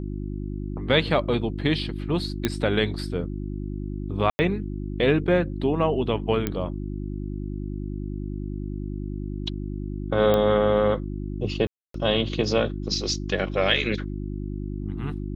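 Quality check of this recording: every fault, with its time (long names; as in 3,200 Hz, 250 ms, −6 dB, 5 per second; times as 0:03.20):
mains hum 50 Hz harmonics 7 −31 dBFS
0:02.45: click −8 dBFS
0:04.30–0:04.39: drop-out 90 ms
0:06.47: click −11 dBFS
0:10.34: click −11 dBFS
0:11.67–0:11.94: drop-out 273 ms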